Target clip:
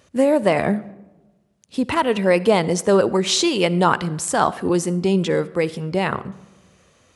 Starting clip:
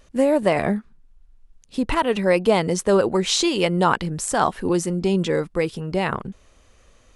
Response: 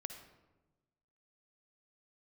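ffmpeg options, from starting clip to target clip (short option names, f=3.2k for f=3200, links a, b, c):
-filter_complex "[0:a]highpass=f=77:w=0.5412,highpass=f=77:w=1.3066,asplit=2[a][b];[1:a]atrim=start_sample=2205[c];[b][c]afir=irnorm=-1:irlink=0,volume=-5.5dB[d];[a][d]amix=inputs=2:normalize=0,volume=-1dB"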